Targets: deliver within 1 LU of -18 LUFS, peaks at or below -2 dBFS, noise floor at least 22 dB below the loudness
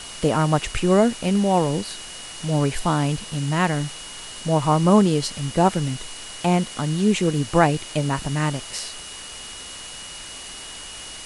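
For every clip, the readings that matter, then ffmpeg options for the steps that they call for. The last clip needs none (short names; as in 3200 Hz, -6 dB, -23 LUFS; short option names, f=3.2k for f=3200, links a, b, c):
steady tone 2900 Hz; tone level -40 dBFS; noise floor -37 dBFS; noise floor target -44 dBFS; loudness -21.5 LUFS; peak -3.0 dBFS; loudness target -18.0 LUFS
-> -af "bandreject=f=2.9k:w=30"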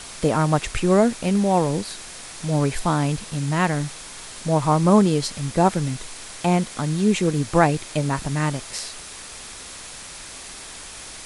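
steady tone none; noise floor -39 dBFS; noise floor target -44 dBFS
-> -af "afftdn=nr=6:nf=-39"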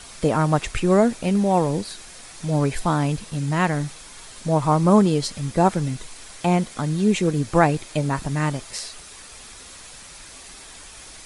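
noise floor -43 dBFS; noise floor target -44 dBFS
-> -af "afftdn=nr=6:nf=-43"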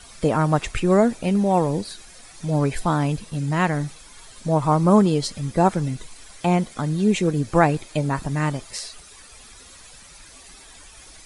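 noise floor -46 dBFS; loudness -21.5 LUFS; peak -3.5 dBFS; loudness target -18.0 LUFS
-> -af "volume=3.5dB,alimiter=limit=-2dB:level=0:latency=1"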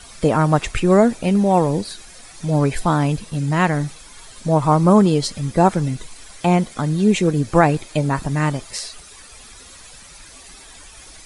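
loudness -18.5 LUFS; peak -2.0 dBFS; noise floor -43 dBFS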